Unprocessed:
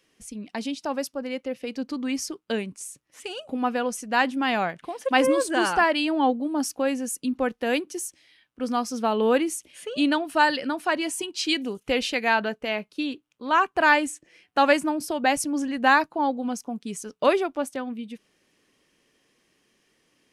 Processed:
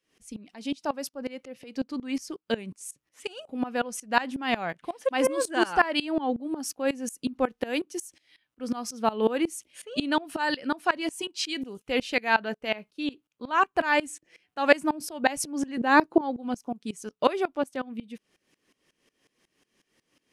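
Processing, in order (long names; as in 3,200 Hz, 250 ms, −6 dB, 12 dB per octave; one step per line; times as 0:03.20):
0:15.77–0:16.21: parametric band 370 Hz +15 dB 0.94 octaves
tremolo with a ramp in dB swelling 5.5 Hz, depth 20 dB
level +3 dB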